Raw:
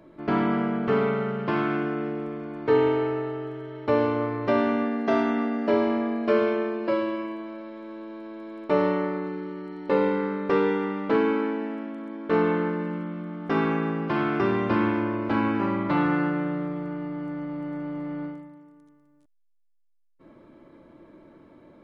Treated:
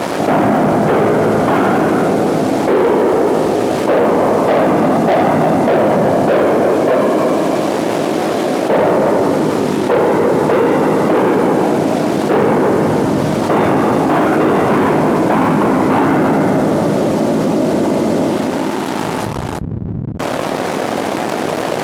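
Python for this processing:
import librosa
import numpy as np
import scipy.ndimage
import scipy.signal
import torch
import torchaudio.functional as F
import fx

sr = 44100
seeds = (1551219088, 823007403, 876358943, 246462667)

y = fx.delta_mod(x, sr, bps=64000, step_db=-38.0)
y = fx.peak_eq(y, sr, hz=690.0, db=12.0, octaves=0.89)
y = fx.whisperise(y, sr, seeds[0])
y = fx.low_shelf(y, sr, hz=250.0, db=8.5)
y = fx.doubler(y, sr, ms=19.0, db=-10.5)
y = y + 10.0 ** (-9.5 / 20.0) * np.pad(y, (int(336 * sr / 1000.0), 0))[:len(y)]
y = fx.leveller(y, sr, passes=3)
y = scipy.signal.sosfilt(scipy.signal.butter(2, 160.0, 'highpass', fs=sr, output='sos'), y)
y = fx.env_flatten(y, sr, amount_pct=70)
y = y * librosa.db_to_amplitude(-6.5)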